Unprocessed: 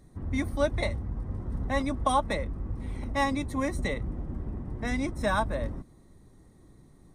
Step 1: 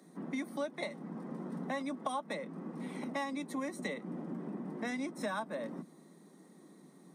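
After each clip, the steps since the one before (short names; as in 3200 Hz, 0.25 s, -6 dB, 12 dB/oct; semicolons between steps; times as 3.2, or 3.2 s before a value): steep high-pass 160 Hz 96 dB/oct; compressor 4:1, threshold -38 dBFS, peak gain reduction 15 dB; gain +2 dB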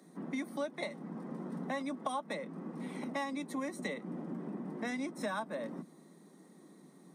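nothing audible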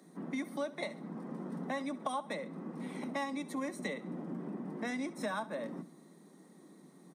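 feedback echo 68 ms, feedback 45%, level -18 dB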